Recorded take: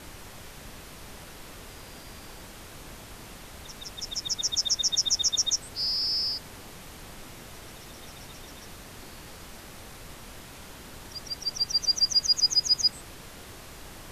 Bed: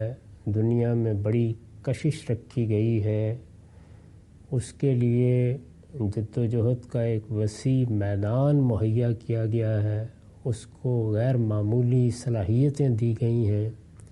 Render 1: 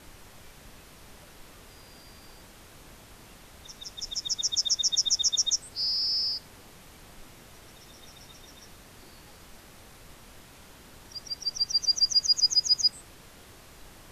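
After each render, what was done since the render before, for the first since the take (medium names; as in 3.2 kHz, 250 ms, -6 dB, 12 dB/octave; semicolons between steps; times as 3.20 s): noise print and reduce 6 dB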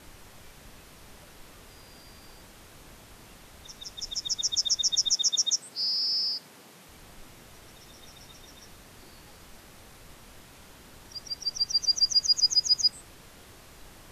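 5.12–6.89 s: high-pass 140 Hz 24 dB/octave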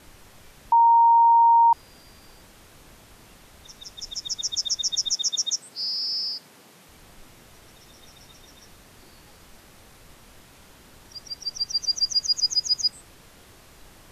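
0.72–1.73 s: bleep 929 Hz -12.5 dBFS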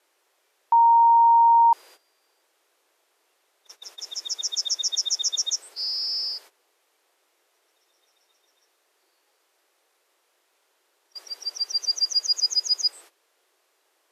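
steep high-pass 350 Hz 48 dB/octave; gate -45 dBFS, range -16 dB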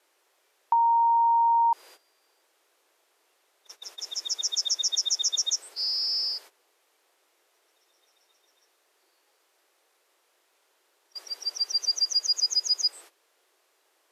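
compression, threshold -20 dBFS, peak gain reduction 5.5 dB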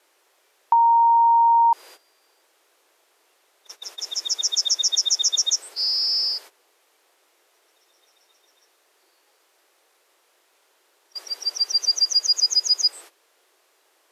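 trim +5.5 dB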